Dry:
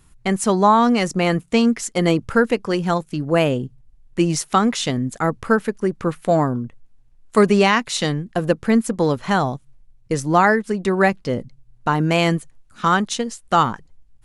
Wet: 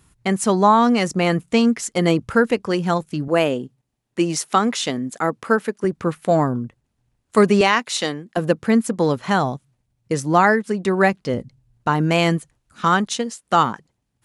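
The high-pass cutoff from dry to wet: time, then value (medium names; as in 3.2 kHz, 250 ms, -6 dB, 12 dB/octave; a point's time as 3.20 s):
54 Hz
from 3.28 s 220 Hz
from 5.84 s 71 Hz
from 7.61 s 290 Hz
from 8.37 s 98 Hz
from 11.34 s 45 Hz
from 13.09 s 140 Hz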